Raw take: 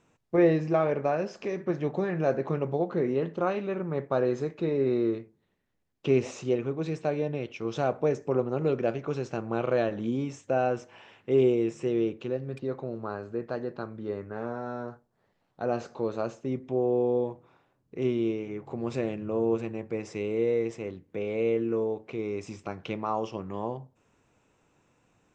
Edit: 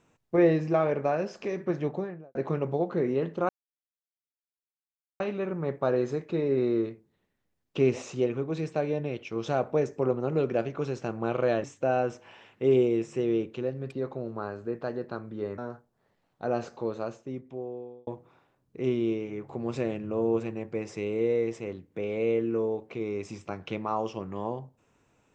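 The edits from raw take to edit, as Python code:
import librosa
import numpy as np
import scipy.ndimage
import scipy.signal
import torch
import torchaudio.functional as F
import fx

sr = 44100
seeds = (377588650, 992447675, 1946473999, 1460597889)

y = fx.studio_fade_out(x, sr, start_s=1.79, length_s=0.56)
y = fx.edit(y, sr, fx.insert_silence(at_s=3.49, length_s=1.71),
    fx.cut(start_s=9.93, length_s=0.38),
    fx.cut(start_s=14.25, length_s=0.51),
    fx.fade_out_span(start_s=15.83, length_s=1.42), tone=tone)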